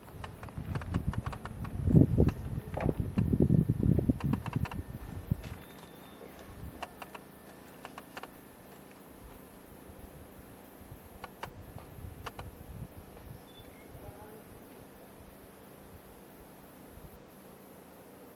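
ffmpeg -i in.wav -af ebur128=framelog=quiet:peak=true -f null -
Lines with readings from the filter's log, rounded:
Integrated loudness:
  I:         -32.7 LUFS
  Threshold: -46.8 LUFS
Loudness range:
  LRA:        21.9 LU
  Threshold: -56.9 LUFS
  LRA low:   -51.7 LUFS
  LRA high:  -29.8 LUFS
True peak:
  Peak:       -7.1 dBFS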